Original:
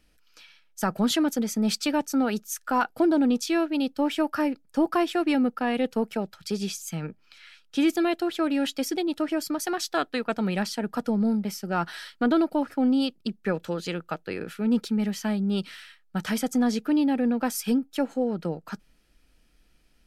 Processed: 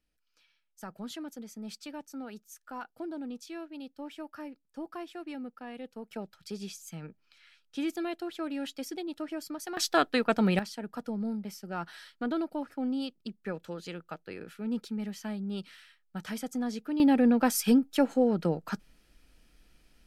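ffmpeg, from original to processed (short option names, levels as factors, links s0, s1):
-af "asetnsamples=n=441:p=0,asendcmd='6.11 volume volume -10dB;9.77 volume volume 1.5dB;10.59 volume volume -9.5dB;17 volume volume 1.5dB',volume=0.141"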